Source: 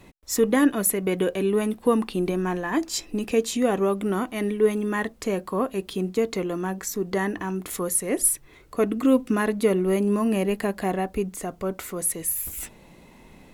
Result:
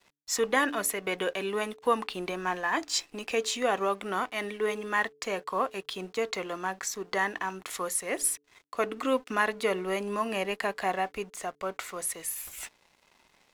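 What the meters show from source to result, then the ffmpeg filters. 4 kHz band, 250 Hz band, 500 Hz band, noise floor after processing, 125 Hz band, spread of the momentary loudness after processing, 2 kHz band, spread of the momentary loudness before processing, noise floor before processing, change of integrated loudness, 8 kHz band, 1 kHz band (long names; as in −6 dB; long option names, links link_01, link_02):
+1.5 dB, −13.5 dB, −7.0 dB, −67 dBFS, −15.0 dB, 8 LU, +2.0 dB, 8 LU, −51 dBFS, −6.0 dB, −5.5 dB, +1.0 dB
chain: -filter_complex "[0:a]acrossover=split=590 7300:gain=0.141 1 0.224[link_01][link_02][link_03];[link_01][link_02][link_03]amix=inputs=3:normalize=0,aeval=exprs='sgn(val(0))*max(abs(val(0))-0.00178,0)':channel_layout=same,bandreject=frequency=144.8:width_type=h:width=4,bandreject=frequency=289.6:width_type=h:width=4,bandreject=frequency=434.4:width_type=h:width=4,volume=2.5dB"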